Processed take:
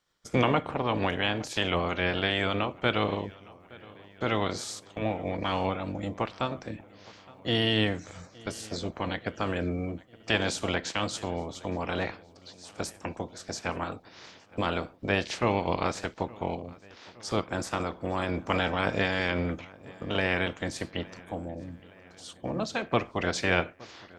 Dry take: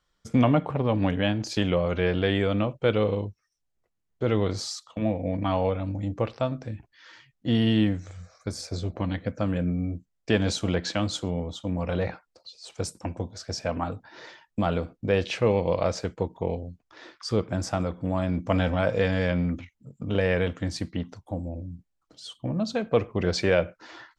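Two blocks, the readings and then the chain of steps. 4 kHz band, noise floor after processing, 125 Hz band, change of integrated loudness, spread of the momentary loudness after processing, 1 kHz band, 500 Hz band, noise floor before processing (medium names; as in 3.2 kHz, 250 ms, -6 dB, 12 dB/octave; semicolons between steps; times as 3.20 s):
+2.0 dB, -55 dBFS, -6.5 dB, -3.0 dB, 17 LU, +2.0 dB, -4.5 dB, -77 dBFS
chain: spectral peaks clipped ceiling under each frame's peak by 17 dB; on a send: filtered feedback delay 867 ms, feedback 63%, low-pass 4.3 kHz, level -22.5 dB; on the sum: trim -3.5 dB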